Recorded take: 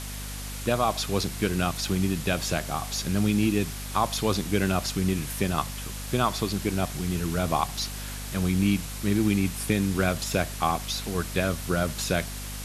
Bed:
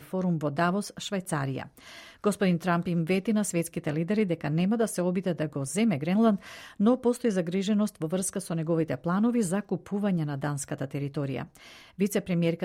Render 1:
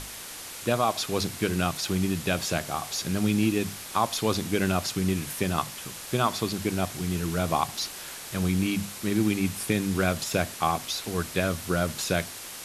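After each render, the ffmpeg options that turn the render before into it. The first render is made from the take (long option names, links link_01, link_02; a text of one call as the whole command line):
ffmpeg -i in.wav -af "bandreject=frequency=50:width_type=h:width=6,bandreject=frequency=100:width_type=h:width=6,bandreject=frequency=150:width_type=h:width=6,bandreject=frequency=200:width_type=h:width=6,bandreject=frequency=250:width_type=h:width=6" out.wav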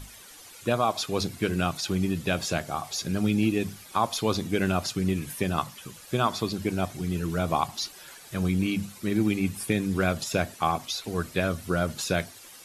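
ffmpeg -i in.wav -af "afftdn=noise_reduction=12:noise_floor=-40" out.wav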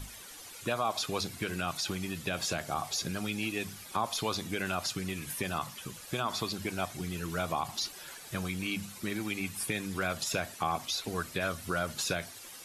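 ffmpeg -i in.wav -filter_complex "[0:a]acrossover=split=680[link_01][link_02];[link_01]acompressor=threshold=-34dB:ratio=10[link_03];[link_02]alimiter=limit=-23dB:level=0:latency=1:release=35[link_04];[link_03][link_04]amix=inputs=2:normalize=0" out.wav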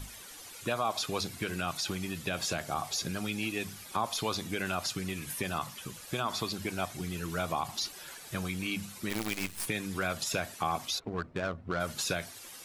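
ffmpeg -i in.wav -filter_complex "[0:a]asplit=3[link_01][link_02][link_03];[link_01]afade=type=out:start_time=9.09:duration=0.02[link_04];[link_02]acrusher=bits=6:dc=4:mix=0:aa=0.000001,afade=type=in:start_time=9.09:duration=0.02,afade=type=out:start_time=9.65:duration=0.02[link_05];[link_03]afade=type=in:start_time=9.65:duration=0.02[link_06];[link_04][link_05][link_06]amix=inputs=3:normalize=0,asplit=3[link_07][link_08][link_09];[link_07]afade=type=out:start_time=10.98:duration=0.02[link_10];[link_08]adynamicsmooth=sensitivity=2.5:basefreq=620,afade=type=in:start_time=10.98:duration=0.02,afade=type=out:start_time=11.79:duration=0.02[link_11];[link_09]afade=type=in:start_time=11.79:duration=0.02[link_12];[link_10][link_11][link_12]amix=inputs=3:normalize=0" out.wav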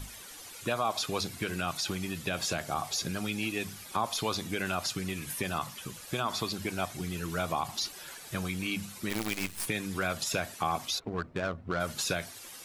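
ffmpeg -i in.wav -af "volume=1dB" out.wav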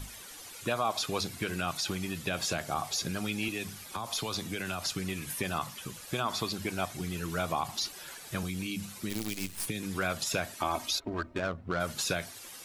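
ffmpeg -i in.wav -filter_complex "[0:a]asettb=1/sr,asplit=3[link_01][link_02][link_03];[link_01]atrim=end=3.484[link_04];[link_02]atrim=start=3.48:end=4.92,asetpts=PTS-STARTPTS,afade=type=in:duration=0.004:curve=qsin,afade=type=out:start_time=1.436:duration=0.004:curve=qsin,acrossover=split=130|3000[link_05][link_06][link_07];[link_06]acompressor=threshold=-32dB:ratio=6:attack=3.2:release=140:knee=2.83:detection=peak[link_08];[link_05][link_08][link_07]amix=inputs=3:normalize=0[link_09];[link_03]atrim=start=4.916[link_10];[link_04][link_09]acrossfade=duration=0.004:curve1=hsin:curve2=qsin[link_11];[link_11][link_10]acrossfade=duration=0.004:curve1=qsin:curve2=hsin,asettb=1/sr,asplit=3[link_12][link_13][link_14];[link_12]atrim=end=8.434[link_15];[link_13]atrim=start=8.43:end=9.83,asetpts=PTS-STARTPTS,afade=type=in:duration=0.004:curve=qsin,afade=type=out:start_time=1.396:duration=0.004:curve=qsin,acrossover=split=410|3000[link_16][link_17][link_18];[link_17]acompressor=threshold=-46dB:ratio=6:attack=3.2:release=140:knee=2.83:detection=peak[link_19];[link_16][link_19][link_18]amix=inputs=3:normalize=0[link_20];[link_14]atrim=start=9.826[link_21];[link_15][link_20]acrossfade=duration=0.004:curve1=hsin:curve2=qsin[link_22];[link_22][link_21]acrossfade=duration=0.004:curve1=qsin:curve2=hsin,asettb=1/sr,asplit=3[link_23][link_24][link_25];[link_23]atrim=end=10.574[link_26];[link_24]atrim=start=10.57:end=11.39,asetpts=PTS-STARTPTS,afade=type=in:duration=0.004:curve=qsin,afade=type=out:start_time=0.816:duration=0.004:curve=qsin,aecho=1:1:3.2:0.65,atrim=end_sample=36162[link_27];[link_25]atrim=start=11.386[link_28];[link_26][link_27]acrossfade=duration=0.004:curve1=hsin:curve2=qsin[link_29];[link_29][link_28]acrossfade=duration=0.004:curve1=qsin:curve2=hsin" out.wav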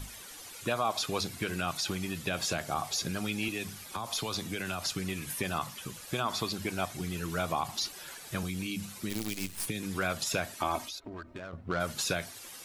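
ffmpeg -i in.wav -filter_complex "[0:a]asettb=1/sr,asplit=3[link_01][link_02][link_03];[link_01]atrim=end=10.834[link_04];[link_02]atrim=start=10.83:end=11.53,asetpts=PTS-STARTPTS,afade=type=in:duration=0.004:curve=qsin,afade=type=out:start_time=0.696:duration=0.004:curve=qsin,acompressor=threshold=-41dB:ratio=3:attack=3.2:release=140:knee=1:detection=peak[link_05];[link_03]atrim=start=11.526[link_06];[link_04][link_05]acrossfade=duration=0.004:curve1=hsin:curve2=qsin[link_07];[link_07][link_06]acrossfade=duration=0.004:curve1=qsin:curve2=hsin" out.wav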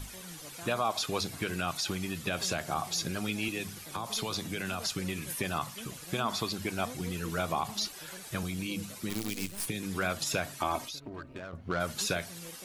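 ffmpeg -i in.wav -i bed.wav -filter_complex "[1:a]volume=-22.5dB[link_01];[0:a][link_01]amix=inputs=2:normalize=0" out.wav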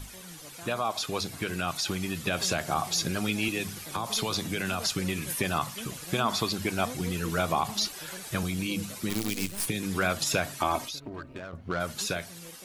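ffmpeg -i in.wav -af "dynaudnorm=framelen=330:gausssize=11:maxgain=4.5dB" out.wav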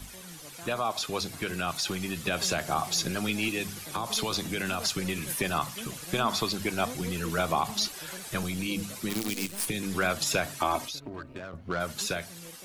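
ffmpeg -i in.wav -filter_complex "[0:a]acrossover=split=150|6200[link_01][link_02][link_03];[link_01]aeval=exprs='clip(val(0),-1,0.00376)':channel_layout=same[link_04];[link_03]acrusher=bits=5:mode=log:mix=0:aa=0.000001[link_05];[link_04][link_02][link_05]amix=inputs=3:normalize=0" out.wav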